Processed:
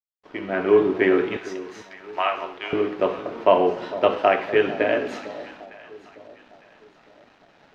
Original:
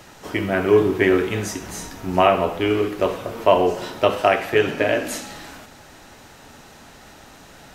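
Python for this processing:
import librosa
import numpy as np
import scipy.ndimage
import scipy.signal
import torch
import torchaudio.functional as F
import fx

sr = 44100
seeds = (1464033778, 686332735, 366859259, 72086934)

y = fx.fade_in_head(x, sr, length_s=0.69)
y = fx.highpass(y, sr, hz=fx.steps((0.0, 220.0), (1.37, 1100.0), (2.73, 190.0)), slope=12)
y = np.sign(y) * np.maximum(np.abs(y) - 10.0 ** (-46.0 / 20.0), 0.0)
y = fx.air_absorb(y, sr, metres=230.0)
y = fx.echo_alternate(y, sr, ms=453, hz=830.0, feedback_pct=57, wet_db=-14)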